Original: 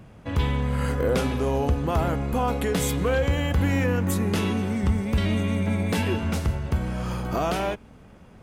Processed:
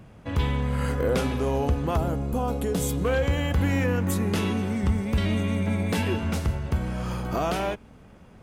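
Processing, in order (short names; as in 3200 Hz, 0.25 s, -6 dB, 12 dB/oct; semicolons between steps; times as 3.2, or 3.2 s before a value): 1.97–3.05 ten-band EQ 1000 Hz -3 dB, 2000 Hz -10 dB, 4000 Hz -3 dB; gain -1 dB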